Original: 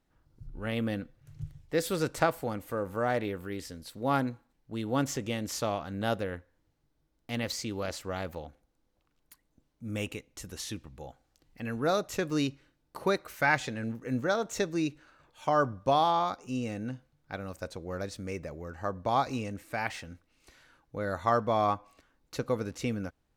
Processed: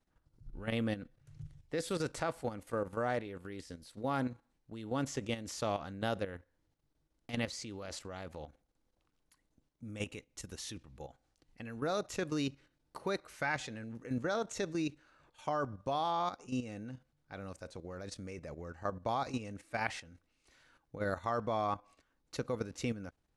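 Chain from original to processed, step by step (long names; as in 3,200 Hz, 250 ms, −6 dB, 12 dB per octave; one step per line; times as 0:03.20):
elliptic low-pass filter 11,000 Hz, stop band 40 dB
output level in coarse steps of 11 dB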